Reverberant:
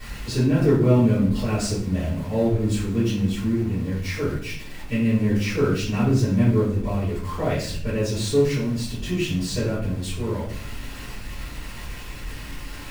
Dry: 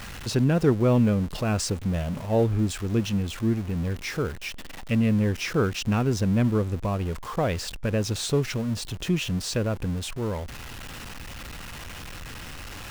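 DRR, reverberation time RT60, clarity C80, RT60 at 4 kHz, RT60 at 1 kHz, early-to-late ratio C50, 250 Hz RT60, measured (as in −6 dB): −12.5 dB, 0.60 s, 7.5 dB, 0.45 s, 0.50 s, 4.0 dB, 1.1 s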